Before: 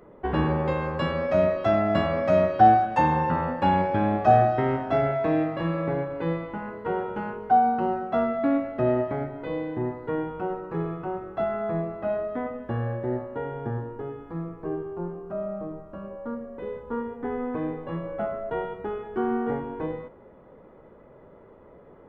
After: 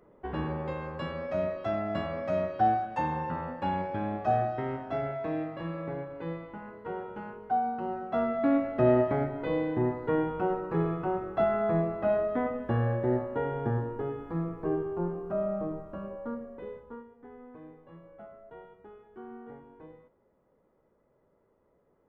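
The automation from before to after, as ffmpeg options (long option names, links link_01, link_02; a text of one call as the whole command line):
ffmpeg -i in.wav -af "volume=1dB,afade=type=in:start_time=7.83:duration=1.13:silence=0.316228,afade=type=out:start_time=15.7:duration=1.01:silence=0.375837,afade=type=out:start_time=16.71:duration=0.35:silence=0.266073" out.wav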